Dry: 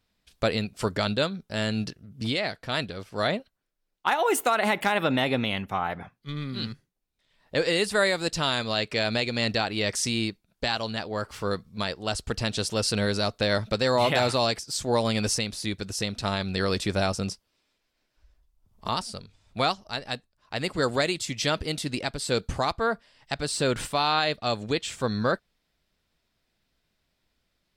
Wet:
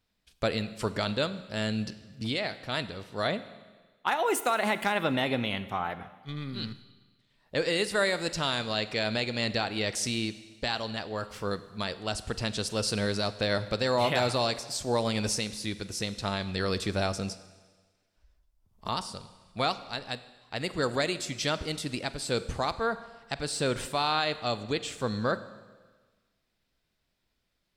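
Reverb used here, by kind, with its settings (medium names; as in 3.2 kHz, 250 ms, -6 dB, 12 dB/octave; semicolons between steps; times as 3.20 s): Schroeder reverb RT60 1.4 s, combs from 33 ms, DRR 13.5 dB; trim -3.5 dB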